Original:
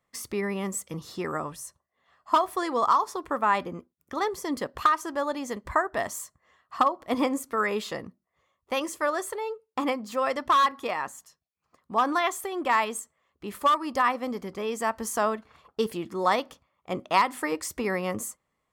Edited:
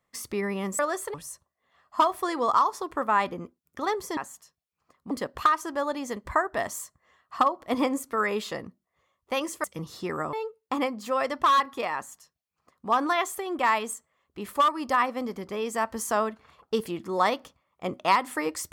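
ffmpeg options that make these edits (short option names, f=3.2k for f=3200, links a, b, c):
-filter_complex "[0:a]asplit=7[a][b][c][d][e][f][g];[a]atrim=end=0.792[h];[b]atrim=start=9.038:end=9.392[i];[c]atrim=start=1.478:end=4.512[j];[d]atrim=start=11.008:end=11.952[k];[e]atrim=start=4.508:end=9.042[l];[f]atrim=start=0.788:end=1.482[m];[g]atrim=start=9.388[n];[h][i]acrossfade=d=0.004:c1=hsin:c2=hsin[o];[o][j]acrossfade=d=0.004:c1=hsin:c2=hsin[p];[p][k]acrossfade=d=0.004:c1=hsin:c2=hsin[q];[q][l]acrossfade=d=0.004:c1=hsin:c2=hsin[r];[r][m]acrossfade=d=0.004:c1=hsin:c2=hsin[s];[s][n]acrossfade=d=0.004:c1=hsin:c2=hsin"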